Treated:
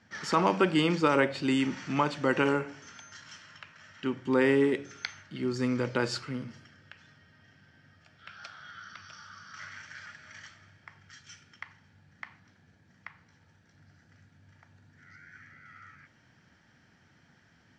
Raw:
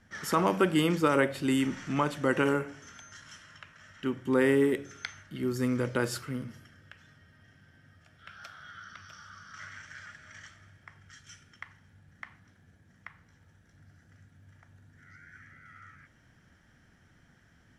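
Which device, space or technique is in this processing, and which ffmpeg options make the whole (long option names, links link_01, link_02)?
car door speaker: -af "highpass=100,equalizer=frequency=890:width_type=q:width=4:gain=4,equalizer=frequency=2500:width_type=q:width=4:gain=4,equalizer=frequency=4500:width_type=q:width=4:gain=7,lowpass=frequency=7200:width=0.5412,lowpass=frequency=7200:width=1.3066"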